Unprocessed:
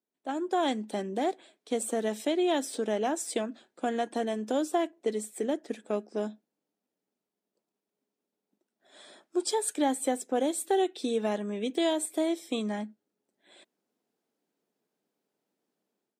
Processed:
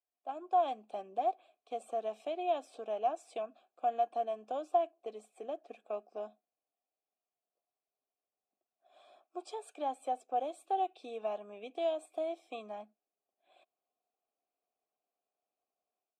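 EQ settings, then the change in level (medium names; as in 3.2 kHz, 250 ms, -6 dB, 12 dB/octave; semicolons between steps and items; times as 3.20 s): vowel filter a; treble shelf 6.1 kHz +5 dB; +2.5 dB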